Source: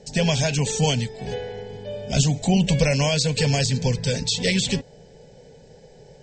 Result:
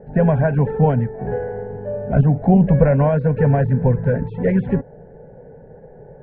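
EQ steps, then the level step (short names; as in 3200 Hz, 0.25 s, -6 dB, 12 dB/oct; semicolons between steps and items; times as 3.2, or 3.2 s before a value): elliptic low-pass 1600 Hz, stop band 80 dB; air absorption 80 m; +7.0 dB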